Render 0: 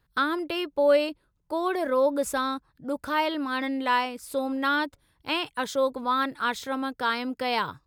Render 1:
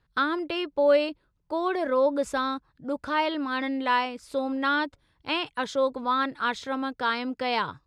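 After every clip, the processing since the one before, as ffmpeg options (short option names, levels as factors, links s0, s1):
-af "lowpass=5800"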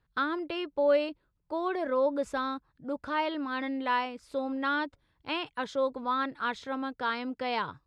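-af "highshelf=f=4800:g=-7,volume=0.631"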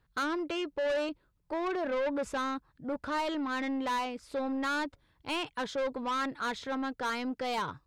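-af "asoftclip=type=tanh:threshold=0.0282,volume=1.41"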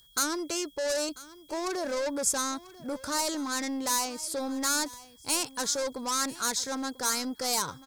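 -af "aeval=exprs='val(0)+0.00126*sin(2*PI*3300*n/s)':c=same,aexciter=amount=14.3:drive=4.6:freq=4700,aecho=1:1:992:0.112"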